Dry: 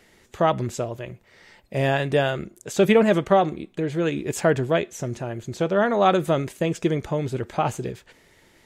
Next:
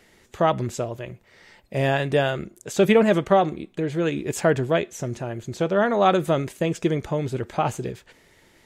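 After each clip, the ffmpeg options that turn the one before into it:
ffmpeg -i in.wav -af anull out.wav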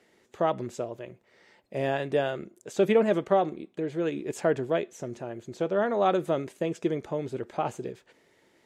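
ffmpeg -i in.wav -af "bandpass=frequency=390:width_type=q:width=0.77:csg=0,crystalizer=i=8:c=0,volume=-5dB" out.wav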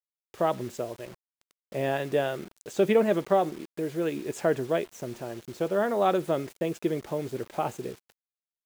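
ffmpeg -i in.wav -af "acrusher=bits=7:mix=0:aa=0.000001" out.wav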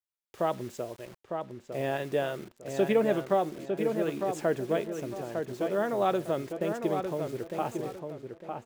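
ffmpeg -i in.wav -filter_complex "[0:a]asplit=2[link_01][link_02];[link_02]adelay=904,lowpass=frequency=2400:poles=1,volume=-5.5dB,asplit=2[link_03][link_04];[link_04]adelay=904,lowpass=frequency=2400:poles=1,volume=0.32,asplit=2[link_05][link_06];[link_06]adelay=904,lowpass=frequency=2400:poles=1,volume=0.32,asplit=2[link_07][link_08];[link_08]adelay=904,lowpass=frequency=2400:poles=1,volume=0.32[link_09];[link_01][link_03][link_05][link_07][link_09]amix=inputs=5:normalize=0,volume=-3dB" out.wav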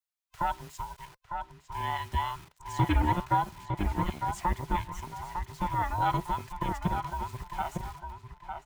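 ffmpeg -i in.wav -filter_complex "[0:a]afftfilt=real='real(if(between(b,1,1008),(2*floor((b-1)/24)+1)*24-b,b),0)':imag='imag(if(between(b,1,1008),(2*floor((b-1)/24)+1)*24-b,b),0)*if(between(b,1,1008),-1,1)':win_size=2048:overlap=0.75,acrossover=split=130|520|6100[link_01][link_02][link_03][link_04];[link_02]acrusher=bits=4:mix=0:aa=0.5[link_05];[link_01][link_05][link_03][link_04]amix=inputs=4:normalize=0" out.wav

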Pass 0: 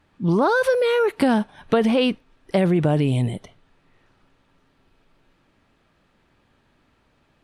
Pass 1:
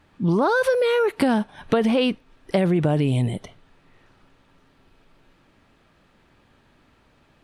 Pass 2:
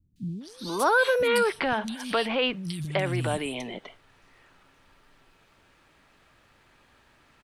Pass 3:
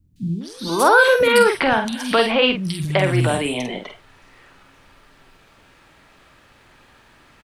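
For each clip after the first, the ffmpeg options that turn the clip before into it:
ffmpeg -i in.wav -af "acompressor=threshold=-29dB:ratio=1.5,volume=4dB" out.wav
ffmpeg -i in.wav -filter_complex "[0:a]tiltshelf=frequency=970:gain=-4.5,acrossover=split=630[link_01][link_02];[link_01]alimiter=limit=-22.5dB:level=0:latency=1[link_03];[link_03][link_02]amix=inputs=2:normalize=0,acrossover=split=220|3600[link_04][link_05][link_06];[link_06]adelay=160[link_07];[link_05]adelay=410[link_08];[link_04][link_08][link_07]amix=inputs=3:normalize=0" out.wav
ffmpeg -i in.wav -filter_complex "[0:a]asplit=2[link_01][link_02];[link_02]adelay=48,volume=-6.5dB[link_03];[link_01][link_03]amix=inputs=2:normalize=0,volume=8dB" out.wav

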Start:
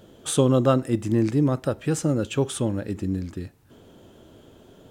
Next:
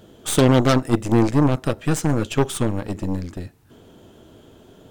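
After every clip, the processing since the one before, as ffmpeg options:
ffmpeg -i in.wav -af "bandreject=frequency=550:width=17,aeval=exprs='0.422*(cos(1*acos(clip(val(0)/0.422,-1,1)))-cos(1*PI/2))+0.119*(cos(6*acos(clip(val(0)/0.422,-1,1)))-cos(6*PI/2))+0.133*(cos(8*acos(clip(val(0)/0.422,-1,1)))-cos(8*PI/2))':channel_layout=same,volume=2.5dB" out.wav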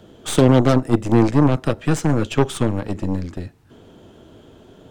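ffmpeg -i in.wav -filter_complex "[0:a]highshelf=frequency=9100:gain=-11.5,acrossover=split=180|1000|7600[link_01][link_02][link_03][link_04];[link_03]alimiter=limit=-18.5dB:level=0:latency=1:release=475[link_05];[link_01][link_02][link_05][link_04]amix=inputs=4:normalize=0,volume=2dB" out.wav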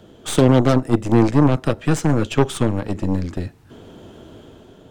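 ffmpeg -i in.wav -af "dynaudnorm=framelen=160:gausssize=7:maxgain=4.5dB" out.wav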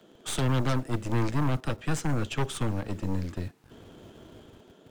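ffmpeg -i in.wav -filter_complex "[0:a]acrossover=split=150|1000|2900[link_01][link_02][link_03][link_04];[link_01]acrusher=bits=7:mix=0:aa=0.000001[link_05];[link_02]aeval=exprs='(tanh(14.1*val(0)+0.5)-tanh(0.5))/14.1':channel_layout=same[link_06];[link_05][link_06][link_03][link_04]amix=inputs=4:normalize=0,volume=-7dB" out.wav

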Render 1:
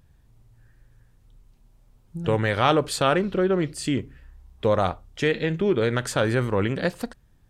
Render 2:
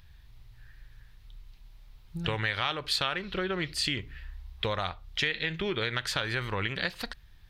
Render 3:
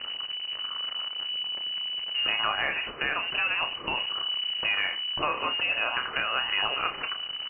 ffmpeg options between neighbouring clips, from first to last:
ffmpeg -i in.wav -af "equalizer=frequency=125:width_type=o:width=1:gain=-6,equalizer=frequency=250:width_type=o:width=1:gain=-11,equalizer=frequency=500:width_type=o:width=1:gain=-6,equalizer=frequency=1000:width_type=o:width=1:gain=3,equalizer=frequency=2000:width_type=o:width=1:gain=6,equalizer=frequency=4000:width_type=o:width=1:gain=9,equalizer=frequency=8000:width_type=o:width=1:gain=-10,acompressor=threshold=-32dB:ratio=3,equalizer=frequency=1000:width=0.54:gain=-6.5,volume=6dB" out.wav
ffmpeg -i in.wav -filter_complex "[0:a]aeval=exprs='val(0)+0.5*0.0316*sgn(val(0))':channel_layout=same,asplit=2[link_01][link_02];[link_02]adelay=30,volume=-8.5dB[link_03];[link_01][link_03]amix=inputs=2:normalize=0,lowpass=frequency=2600:width_type=q:width=0.5098,lowpass=frequency=2600:width_type=q:width=0.6013,lowpass=frequency=2600:width_type=q:width=0.9,lowpass=frequency=2600:width_type=q:width=2.563,afreqshift=-3000" out.wav

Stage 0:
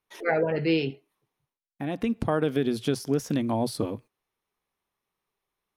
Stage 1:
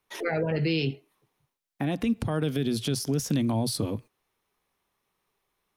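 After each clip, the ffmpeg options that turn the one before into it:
ffmpeg -i in.wav -filter_complex "[0:a]acrossover=split=200|3000[link_01][link_02][link_03];[link_02]acompressor=threshold=-38dB:ratio=2.5[link_04];[link_01][link_04][link_03]amix=inputs=3:normalize=0,alimiter=limit=-24dB:level=0:latency=1:release=46,volume=6.5dB" out.wav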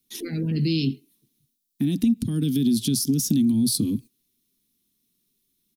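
ffmpeg -i in.wav -af "firequalizer=gain_entry='entry(100,0);entry(240,13);entry(580,-23);entry(3700,6);entry(7300,8);entry(13000,13)':delay=0.05:min_phase=1,acompressor=threshold=-17dB:ratio=6" out.wav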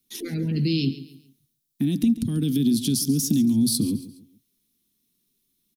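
ffmpeg -i in.wav -af "aecho=1:1:139|278|417:0.168|0.0588|0.0206" out.wav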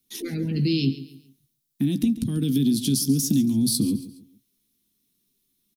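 ffmpeg -i in.wav -filter_complex "[0:a]asplit=2[link_01][link_02];[link_02]adelay=15,volume=-11.5dB[link_03];[link_01][link_03]amix=inputs=2:normalize=0" out.wav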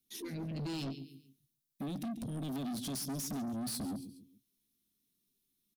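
ffmpeg -i in.wav -af "asoftclip=type=tanh:threshold=-27.5dB,volume=-8.5dB" out.wav

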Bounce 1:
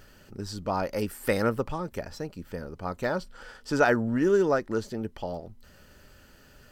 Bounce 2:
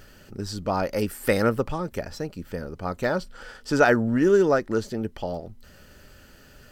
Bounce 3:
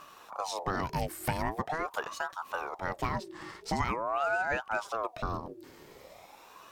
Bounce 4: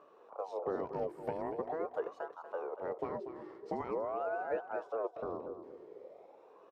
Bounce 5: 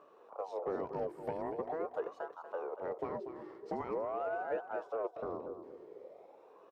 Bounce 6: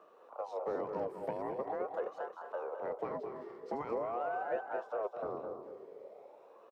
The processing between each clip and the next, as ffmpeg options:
ffmpeg -i in.wav -af "equalizer=frequency=970:width=3.3:gain=-3,volume=4dB" out.wav
ffmpeg -i in.wav -af "acompressor=threshold=-25dB:ratio=6,aeval=exprs='val(0)*sin(2*PI*740*n/s+740*0.55/0.44*sin(2*PI*0.44*n/s))':channel_layout=same" out.wav
ffmpeg -i in.wav -af "bandpass=frequency=450:width_type=q:width=3.5:csg=0,aecho=1:1:238|476|714:0.282|0.0705|0.0176,volume=5.5dB" out.wav
ffmpeg -i in.wav -af "asoftclip=type=tanh:threshold=-24dB" out.wav
ffmpeg -i in.wav -af "afreqshift=31,aecho=1:1:209:0.376" out.wav

